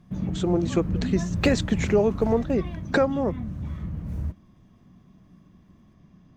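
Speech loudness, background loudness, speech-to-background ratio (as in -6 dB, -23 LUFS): -25.0 LUFS, -31.0 LUFS, 6.0 dB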